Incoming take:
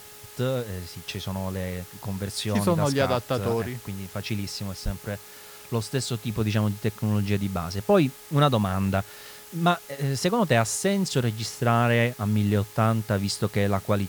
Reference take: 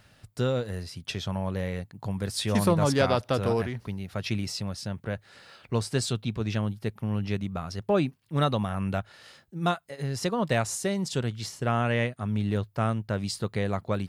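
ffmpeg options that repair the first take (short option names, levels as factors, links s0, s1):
-filter_complex "[0:a]bandreject=f=419.5:t=h:w=4,bandreject=f=839:t=h:w=4,bandreject=f=1258.5:t=h:w=4,bandreject=f=1678:t=h:w=4,bandreject=f=2097.5:t=h:w=4,asplit=3[s0][s1][s2];[s0]afade=t=out:st=4.84:d=0.02[s3];[s1]highpass=f=140:w=0.5412,highpass=f=140:w=1.3066,afade=t=in:st=4.84:d=0.02,afade=t=out:st=4.96:d=0.02[s4];[s2]afade=t=in:st=4.96:d=0.02[s5];[s3][s4][s5]amix=inputs=3:normalize=0,afwtdn=0.005,asetnsamples=n=441:p=0,asendcmd='6.3 volume volume -4.5dB',volume=1"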